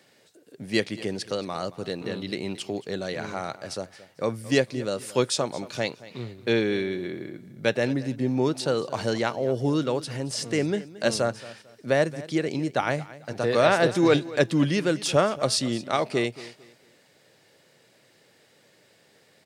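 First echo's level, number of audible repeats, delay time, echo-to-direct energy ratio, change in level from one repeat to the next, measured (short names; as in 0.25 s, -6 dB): -18.0 dB, 2, 0.224 s, -17.5 dB, -11.0 dB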